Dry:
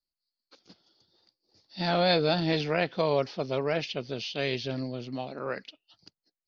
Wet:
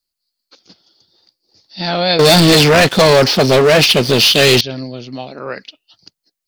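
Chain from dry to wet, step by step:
high-shelf EQ 3,400 Hz +7.5 dB
0:02.19–0:04.61: leveller curve on the samples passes 5
level +7.5 dB

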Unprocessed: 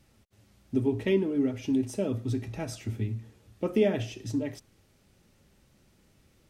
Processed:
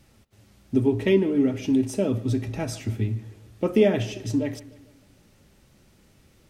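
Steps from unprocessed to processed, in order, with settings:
bucket-brigade delay 150 ms, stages 4,096, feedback 51%, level −19 dB
level +5.5 dB

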